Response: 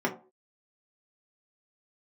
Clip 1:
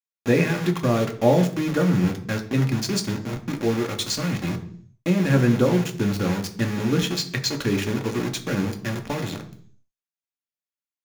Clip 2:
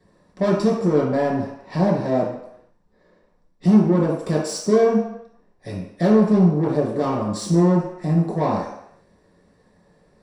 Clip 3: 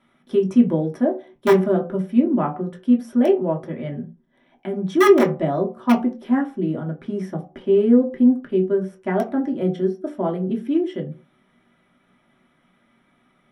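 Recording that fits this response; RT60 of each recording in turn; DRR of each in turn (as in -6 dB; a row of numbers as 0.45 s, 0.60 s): 3; 0.55 s, 0.75 s, no single decay rate; 3.5 dB, -5.0 dB, -2.0 dB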